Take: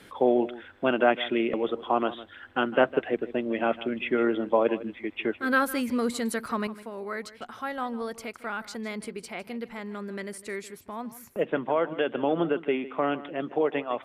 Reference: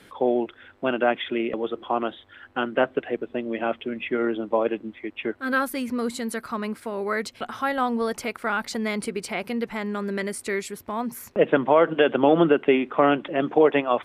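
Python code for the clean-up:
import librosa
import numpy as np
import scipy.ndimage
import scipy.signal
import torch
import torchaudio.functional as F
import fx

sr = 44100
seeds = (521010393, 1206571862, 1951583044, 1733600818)

y = fx.fix_echo_inverse(x, sr, delay_ms=156, level_db=-16.5)
y = fx.gain(y, sr, db=fx.steps((0.0, 0.0), (6.67, 8.0)))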